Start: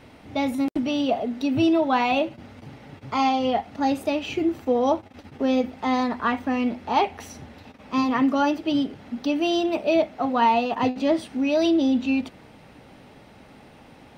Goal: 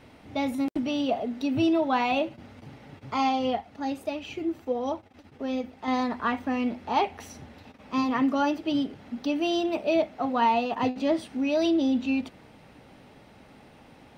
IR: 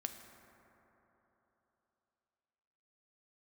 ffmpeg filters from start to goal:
-filter_complex "[0:a]asettb=1/sr,asplit=3[link_01][link_02][link_03];[link_01]atrim=end=3.554[link_04];[link_02]atrim=start=3.55:end=5.88,asetpts=PTS-STARTPTS,afade=type=in:duration=0.004:curve=qsin,afade=type=out:start_time=2.326:duration=0.004:curve=qsin,flanger=delay=0.3:depth=3.2:regen=69:speed=1.5:shape=triangular[link_05];[link_03]atrim=start=5.876[link_06];[link_04][link_05]acrossfade=duration=0.004:curve1=hsin:curve2=qsin[link_07];[link_07][link_06]acrossfade=duration=0.004:curve1=qsin:curve2=hsin,volume=-3.5dB"

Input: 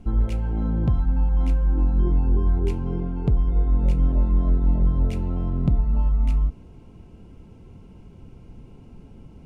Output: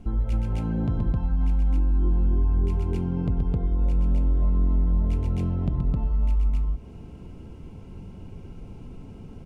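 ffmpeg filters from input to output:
ffmpeg -i in.wav -af "aecho=1:1:125.4|262.4:0.631|1,acompressor=threshold=-25dB:ratio=2" out.wav

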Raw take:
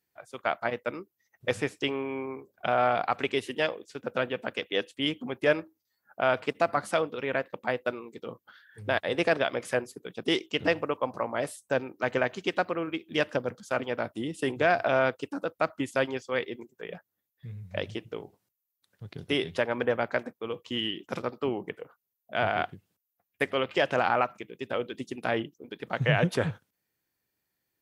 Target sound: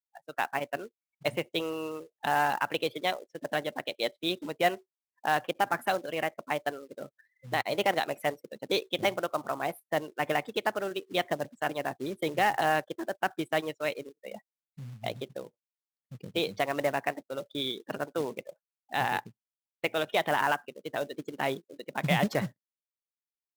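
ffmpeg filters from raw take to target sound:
ffmpeg -i in.wav -af "afftdn=noise_reduction=32:noise_floor=-41,acontrast=23,acrusher=bits=4:mode=log:mix=0:aa=0.000001,asetrate=52038,aresample=44100,volume=-6.5dB" out.wav

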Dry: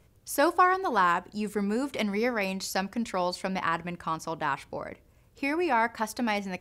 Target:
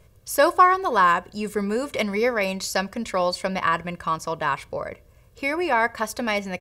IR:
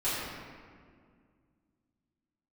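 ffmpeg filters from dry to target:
-af "aecho=1:1:1.8:0.48,volume=4.5dB"

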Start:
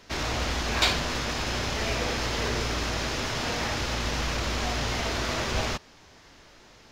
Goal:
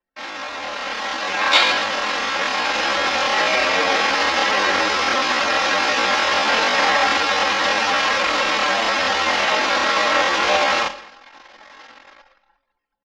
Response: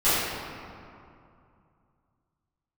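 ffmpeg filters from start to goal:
-filter_complex "[0:a]dynaudnorm=framelen=100:gausssize=11:maxgain=13dB,asplit=2[link_01][link_02];[1:a]atrim=start_sample=2205,afade=type=out:start_time=0.13:duration=0.01,atrim=end_sample=6174,highshelf=frequency=2600:gain=4.5[link_03];[link_02][link_03]afir=irnorm=-1:irlink=0,volume=-30dB[link_04];[link_01][link_04]amix=inputs=2:normalize=0,afreqshift=-37,highshelf=frequency=9700:gain=-12,atempo=0.53,highpass=720,anlmdn=0.1,aemphasis=mode=reproduction:type=bsi,aecho=1:1:3.7:0.57,asplit=2[link_05][link_06];[link_06]adelay=204.1,volume=-21dB,highshelf=frequency=4000:gain=-4.59[link_07];[link_05][link_07]amix=inputs=2:normalize=0,volume=3dB"

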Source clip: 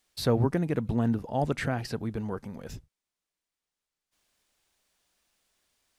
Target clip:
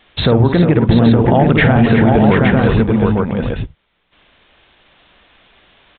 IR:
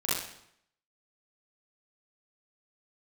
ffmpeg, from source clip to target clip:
-filter_complex "[0:a]acompressor=threshold=-32dB:ratio=6,asplit=2[link_01][link_02];[link_02]aecho=0:1:52|267|362|391|734|867:0.316|0.119|0.355|0.15|0.501|0.501[link_03];[link_01][link_03]amix=inputs=2:normalize=0,aresample=8000,aresample=44100,alimiter=level_in=27dB:limit=-1dB:release=50:level=0:latency=1,volume=-1dB"

